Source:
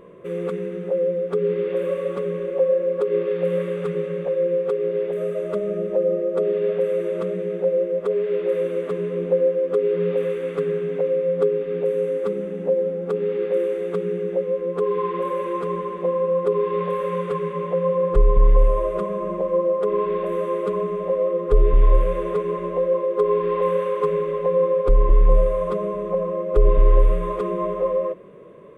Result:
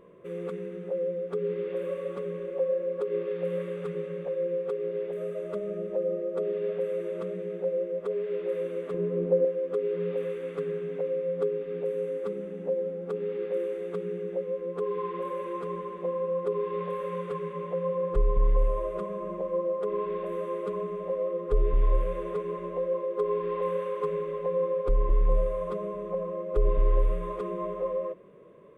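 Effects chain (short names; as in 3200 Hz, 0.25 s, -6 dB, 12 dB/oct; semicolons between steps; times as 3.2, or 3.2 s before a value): 8.94–9.45 tilt shelf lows +6.5 dB, about 1200 Hz; gain -8.5 dB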